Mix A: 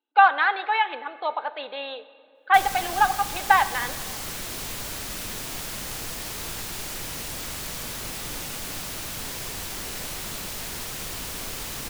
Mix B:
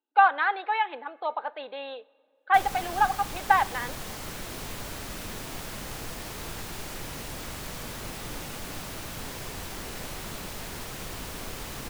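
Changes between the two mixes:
speech: send -11.5 dB; master: add treble shelf 2.3 kHz -8 dB

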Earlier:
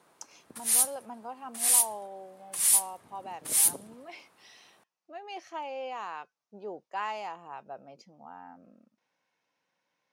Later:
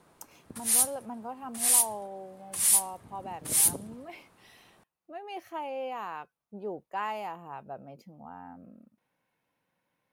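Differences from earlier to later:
speech: remove resonant low-pass 5.9 kHz, resonance Q 2.5; master: remove high-pass 430 Hz 6 dB/octave

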